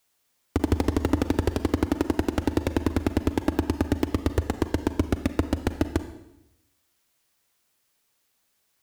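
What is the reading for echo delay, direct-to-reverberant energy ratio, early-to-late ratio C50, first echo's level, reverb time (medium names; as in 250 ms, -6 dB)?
no echo, 10.5 dB, 12.0 dB, no echo, 0.85 s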